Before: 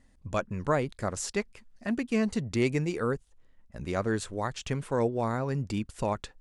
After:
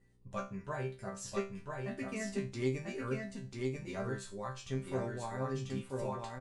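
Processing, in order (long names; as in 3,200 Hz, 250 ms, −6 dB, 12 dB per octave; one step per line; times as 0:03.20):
spectral magnitudes quantised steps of 15 dB
0:00.58–0:01.22: notch comb filter 270 Hz
hum with harmonics 60 Hz, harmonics 8, −56 dBFS −5 dB per octave
resonators tuned to a chord C3 fifth, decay 0.31 s
on a send: single-tap delay 991 ms −3 dB
on the sum: level +4.5 dB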